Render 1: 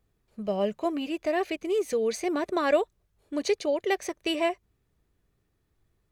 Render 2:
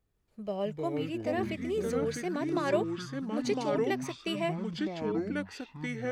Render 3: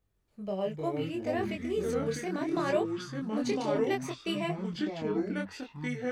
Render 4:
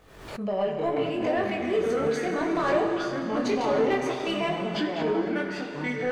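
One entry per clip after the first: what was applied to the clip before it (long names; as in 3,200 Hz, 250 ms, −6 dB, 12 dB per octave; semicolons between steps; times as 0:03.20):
delay with pitch and tempo change per echo 146 ms, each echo −5 semitones, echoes 3; level −6 dB
chorus effect 0.67 Hz, delay 20 ms, depth 7 ms; level +3 dB
mid-hump overdrive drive 16 dB, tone 1,800 Hz, clips at −15.5 dBFS; dense smooth reverb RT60 2.6 s, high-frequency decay 0.85×, DRR 3 dB; background raised ahead of every attack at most 64 dB per second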